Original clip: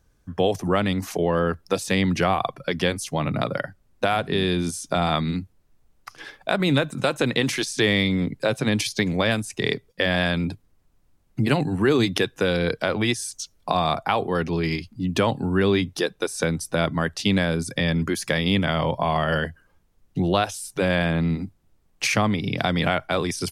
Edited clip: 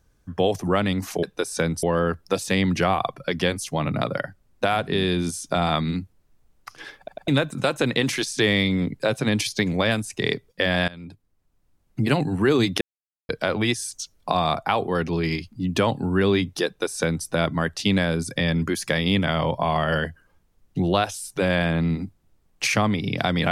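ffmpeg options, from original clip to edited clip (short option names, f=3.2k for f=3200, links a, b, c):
-filter_complex "[0:a]asplit=9[a][b][c][d][e][f][g][h][i];[a]atrim=end=1.232[j];[b]atrim=start=16.058:end=16.662[k];[c]atrim=start=1.228:end=6.482[l];[d]atrim=start=6.378:end=6.482[m];[e]atrim=start=6.378:end=6.482[n];[f]atrim=start=6.678:end=10.28,asetpts=PTS-STARTPTS,afade=t=out:st=3.598:d=0.004:c=hsin:silence=0.0944061[o];[g]atrim=start=10.28:end=12.21,asetpts=PTS-STARTPTS,afade=t=in:d=1.25:silence=0.0944061,afade=t=out:st=1.926:d=0.004:c=hsin[p];[h]atrim=start=12.21:end=12.69,asetpts=PTS-STARTPTS,volume=0[q];[i]atrim=start=12.69,asetpts=PTS-STARTPTS,afade=t=in:d=0.004:c=hsin[r];[j][k]acrossfade=d=0.004:c1=hsin:c2=hsin[s];[s][l]acrossfade=d=0.004:c1=hsin:c2=hsin[t];[t][m]acrossfade=d=0.004:c1=hsin:c2=hsin[u];[u][n]acrossfade=d=0.004:c1=hsin:c2=hsin[v];[o][p][q][r]concat=n=4:v=0:a=1[w];[v][w]acrossfade=d=0.004:c1=hsin:c2=hsin"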